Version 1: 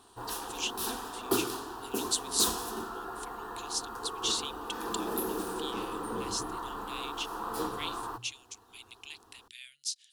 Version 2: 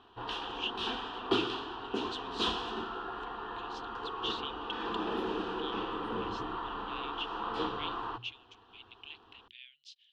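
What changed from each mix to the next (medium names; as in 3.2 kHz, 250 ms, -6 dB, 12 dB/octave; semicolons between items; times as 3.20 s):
background +10.5 dB; master: add four-pole ladder low-pass 3.4 kHz, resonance 65%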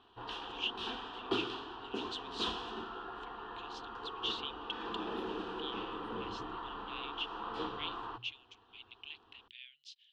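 background -5.0 dB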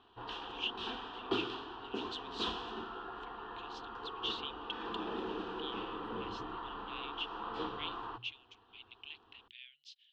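master: add distance through air 52 m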